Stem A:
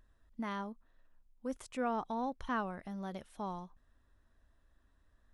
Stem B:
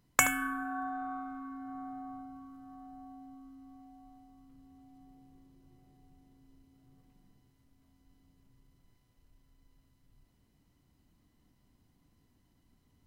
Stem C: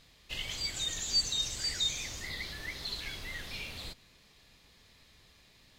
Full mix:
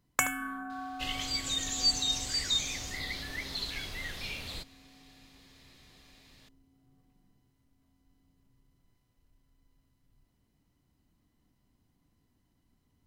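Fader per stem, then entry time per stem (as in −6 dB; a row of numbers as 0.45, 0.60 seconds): −19.5, −3.0, +2.0 decibels; 0.00, 0.00, 0.70 seconds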